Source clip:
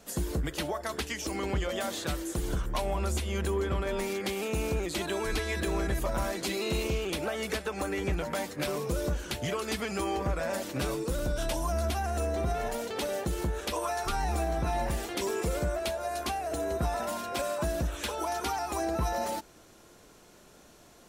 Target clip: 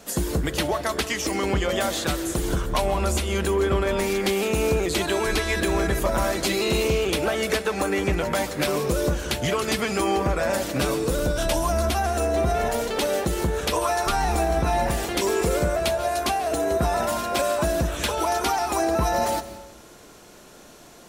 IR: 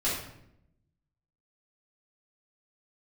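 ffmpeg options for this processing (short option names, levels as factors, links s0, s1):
-filter_complex "[0:a]lowshelf=f=110:g=-5,asplit=2[s0][s1];[1:a]atrim=start_sample=2205,adelay=132[s2];[s1][s2]afir=irnorm=-1:irlink=0,volume=0.0794[s3];[s0][s3]amix=inputs=2:normalize=0,volume=2.66"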